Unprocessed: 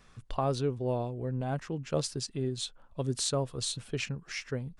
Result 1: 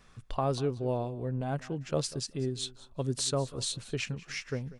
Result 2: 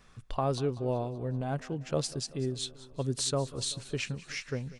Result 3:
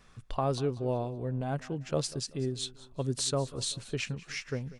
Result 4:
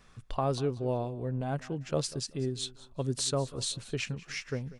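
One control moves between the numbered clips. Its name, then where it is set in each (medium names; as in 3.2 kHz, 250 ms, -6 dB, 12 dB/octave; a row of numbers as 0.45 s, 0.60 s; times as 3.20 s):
feedback delay, feedback: 16%, 62%, 39%, 26%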